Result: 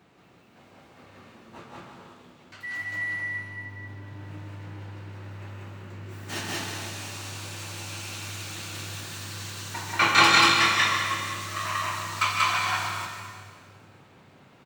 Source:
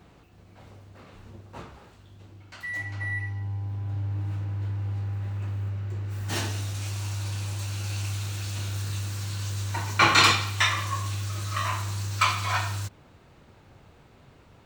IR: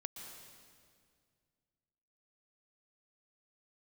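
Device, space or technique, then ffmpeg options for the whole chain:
stadium PA: -filter_complex "[0:a]highpass=140,equalizer=f=2100:t=o:w=1.4:g=3,aecho=1:1:154.5|186.6:0.355|1[s0];[1:a]atrim=start_sample=2205[s1];[s0][s1]afir=irnorm=-1:irlink=0"

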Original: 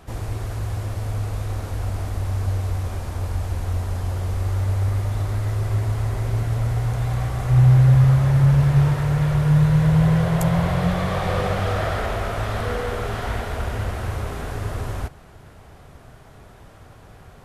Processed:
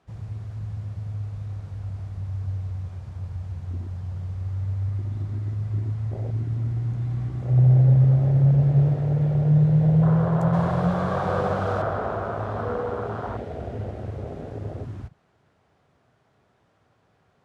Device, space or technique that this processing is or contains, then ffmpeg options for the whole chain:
over-cleaned archive recording: -filter_complex "[0:a]highpass=120,lowpass=6300,afwtdn=0.0562,asettb=1/sr,asplit=3[s0][s1][s2];[s0]atrim=end=10.534[s3];[s1]atrim=start=10.53:end=11.82,asetpts=PTS-STARTPTS,afade=t=in:d=0.004:c=qsin,afade=t=out:st=1.286:d=0.004:c=qsin,highshelf=f=3200:g=11[s4];[s2]atrim=start=11.816[s5];[s3][s4]acrossfade=d=0.004:c1=hsin:c2=qsin[s6];[s6][s5]acrossfade=d=0.004:c1=qsin:c2=hsin"

